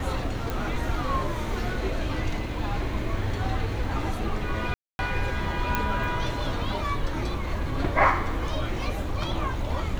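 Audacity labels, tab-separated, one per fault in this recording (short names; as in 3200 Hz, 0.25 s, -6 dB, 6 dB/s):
0.500000	0.500000	pop
4.740000	4.990000	gap 0.251 s
5.750000	5.750000	pop -10 dBFS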